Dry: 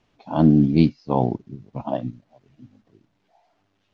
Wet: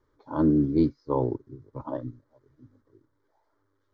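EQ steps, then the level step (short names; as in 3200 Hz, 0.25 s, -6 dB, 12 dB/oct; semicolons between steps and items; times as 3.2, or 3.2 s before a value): high shelf 2800 Hz -11 dB; fixed phaser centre 720 Hz, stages 6; 0.0 dB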